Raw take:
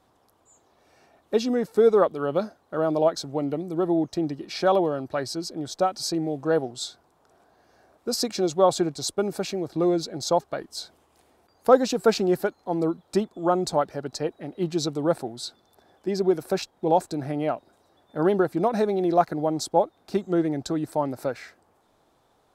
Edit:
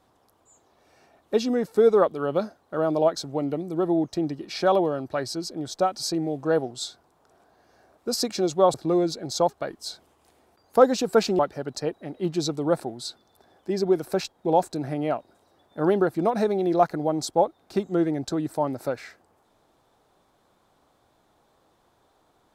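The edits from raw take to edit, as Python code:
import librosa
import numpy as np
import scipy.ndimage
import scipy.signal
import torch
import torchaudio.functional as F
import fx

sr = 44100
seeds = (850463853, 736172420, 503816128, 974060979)

y = fx.edit(x, sr, fx.cut(start_s=8.74, length_s=0.91),
    fx.cut(start_s=12.3, length_s=1.47), tone=tone)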